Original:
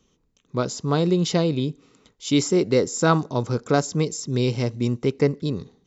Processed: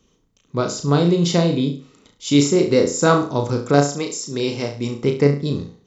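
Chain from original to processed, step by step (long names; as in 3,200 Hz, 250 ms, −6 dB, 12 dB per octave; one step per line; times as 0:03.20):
0:03.91–0:05.02: high-pass filter 540 Hz → 200 Hz 6 dB per octave
on a send: flutter between parallel walls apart 6 metres, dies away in 0.38 s
on the sum: level +2.5 dB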